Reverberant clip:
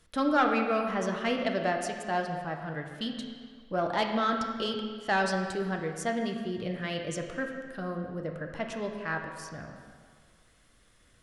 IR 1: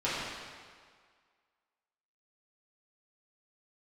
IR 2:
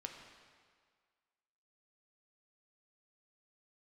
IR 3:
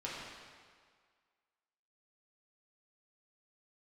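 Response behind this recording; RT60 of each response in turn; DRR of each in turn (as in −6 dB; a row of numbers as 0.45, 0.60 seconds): 2; 1.8, 1.8, 1.8 seconds; −11.0, 2.0, −7.0 decibels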